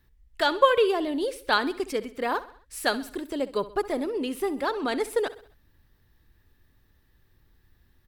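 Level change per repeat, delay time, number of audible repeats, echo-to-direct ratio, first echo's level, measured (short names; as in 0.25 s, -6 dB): -6.5 dB, 65 ms, 3, -15.5 dB, -16.5 dB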